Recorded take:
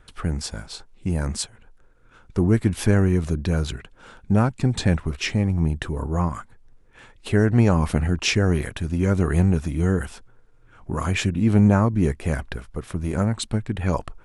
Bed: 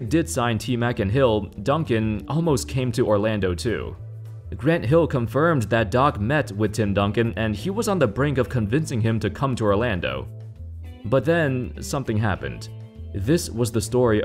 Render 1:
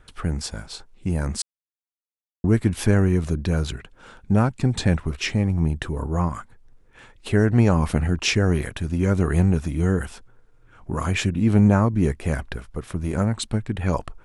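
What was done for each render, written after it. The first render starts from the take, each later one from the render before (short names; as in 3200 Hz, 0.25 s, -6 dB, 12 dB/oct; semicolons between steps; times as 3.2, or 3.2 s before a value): 1.42–2.44 mute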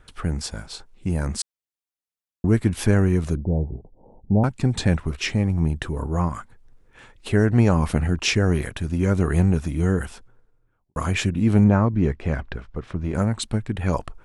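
3.37–4.44 steep low-pass 880 Hz 72 dB/oct; 10.05–10.96 studio fade out; 11.64–13.15 air absorption 140 m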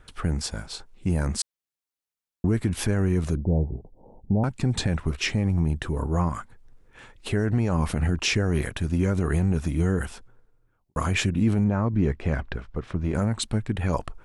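limiter -13.5 dBFS, peak gain reduction 9 dB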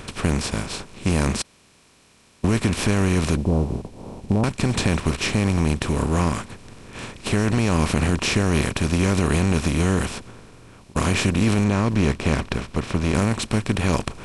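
per-bin compression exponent 0.4; upward expander 1.5:1, over -33 dBFS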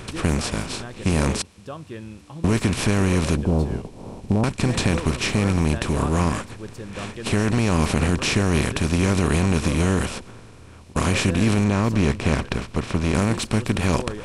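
add bed -14.5 dB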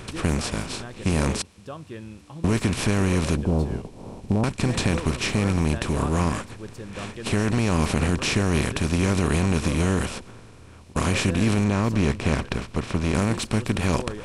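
gain -2 dB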